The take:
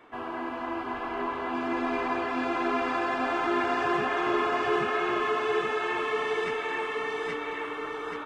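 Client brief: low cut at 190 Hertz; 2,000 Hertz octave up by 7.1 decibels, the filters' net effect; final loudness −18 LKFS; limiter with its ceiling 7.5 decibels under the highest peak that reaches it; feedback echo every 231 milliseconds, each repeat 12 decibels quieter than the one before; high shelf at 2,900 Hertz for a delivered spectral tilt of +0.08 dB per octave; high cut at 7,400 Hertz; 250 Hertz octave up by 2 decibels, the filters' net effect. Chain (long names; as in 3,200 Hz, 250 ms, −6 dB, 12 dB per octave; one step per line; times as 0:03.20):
high-pass filter 190 Hz
low-pass filter 7,400 Hz
parametric band 250 Hz +3.5 dB
parametric band 2,000 Hz +6.5 dB
high-shelf EQ 2,900 Hz +5.5 dB
brickwall limiter −19.5 dBFS
repeating echo 231 ms, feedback 25%, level −12 dB
level +9.5 dB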